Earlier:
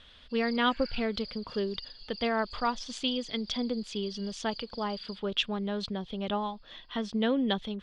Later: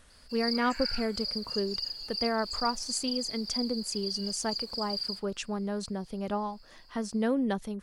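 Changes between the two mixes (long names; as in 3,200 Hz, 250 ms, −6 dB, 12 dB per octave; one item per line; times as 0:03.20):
background +11.0 dB
master: remove low-pass with resonance 3,400 Hz, resonance Q 6.6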